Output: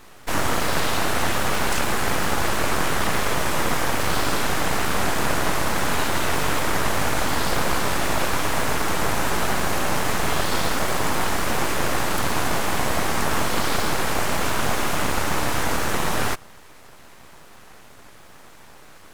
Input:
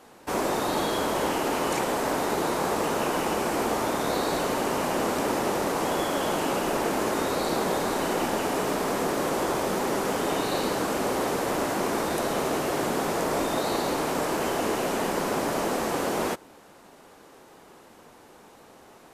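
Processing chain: full-wave rectifier; gain +7 dB

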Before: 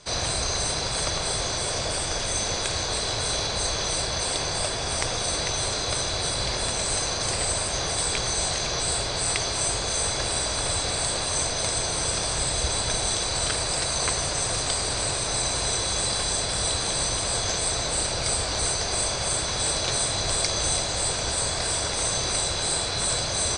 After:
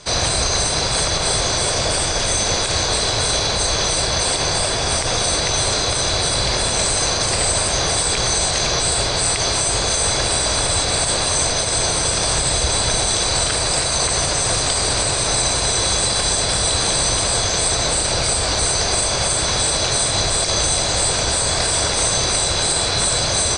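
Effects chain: limiter -16.5 dBFS, peak gain reduction 9.5 dB; gain +8.5 dB

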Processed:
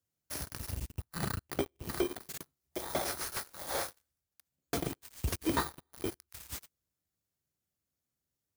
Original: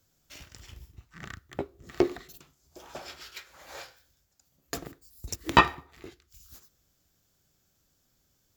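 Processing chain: FFT order left unsorted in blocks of 16 samples; HPF 55 Hz 24 dB/oct; compressor 5:1, threshold -36 dBFS, peak gain reduction 21 dB; sample leveller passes 5; slew limiter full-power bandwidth 380 Hz; gain -7 dB

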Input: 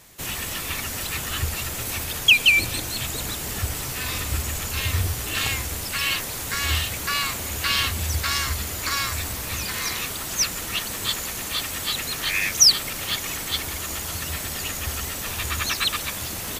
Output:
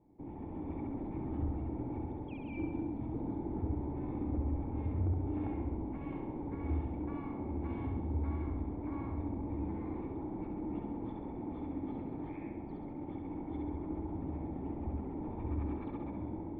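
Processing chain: AGC gain up to 5.5 dB; vocal tract filter u; soft clip -29.5 dBFS, distortion -18 dB; flutter echo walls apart 11.5 m, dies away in 0.9 s; gain +1 dB

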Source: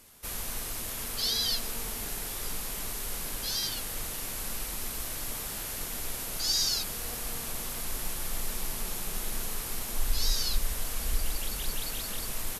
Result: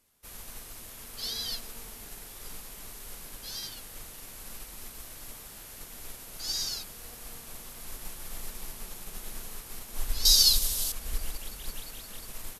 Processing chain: 10.25–10.92 resonant high shelf 2900 Hz +10.5 dB, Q 1.5; upward expander 1.5:1, over -46 dBFS

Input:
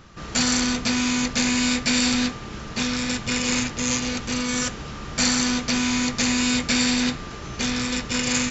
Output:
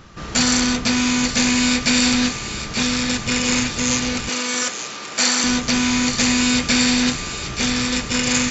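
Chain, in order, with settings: 4.29–5.44 HPF 360 Hz 12 dB/oct; thin delay 0.88 s, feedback 50%, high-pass 1600 Hz, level -9 dB; gain +4 dB

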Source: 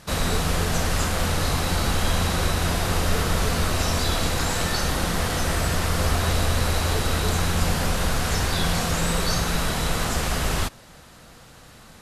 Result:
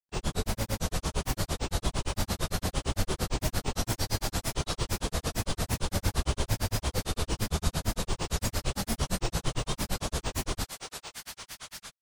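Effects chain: thinning echo 0.339 s, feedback 84%, high-pass 770 Hz, level -7 dB; grains 99 ms, grains 8.8/s, pitch spread up and down by 7 st; dynamic EQ 1800 Hz, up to -6 dB, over -43 dBFS, Q 0.77; gain -3 dB

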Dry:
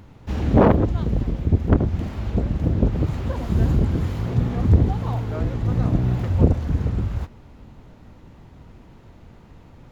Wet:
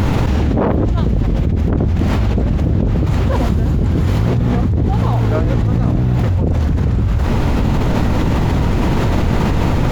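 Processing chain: fast leveller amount 100%; gain -4.5 dB

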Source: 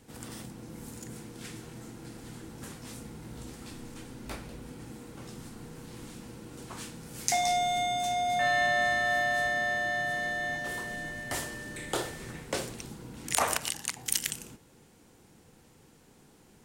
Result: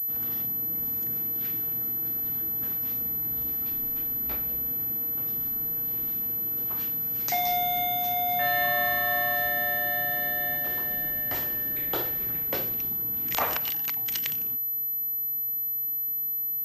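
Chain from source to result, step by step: 8.62–9.34 whine 1100 Hz -42 dBFS; pulse-width modulation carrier 12000 Hz

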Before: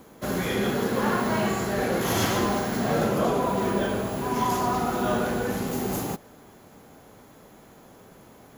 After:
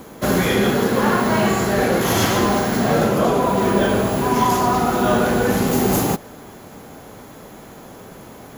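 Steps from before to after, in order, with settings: vocal rider within 3 dB 0.5 s; gain +8 dB

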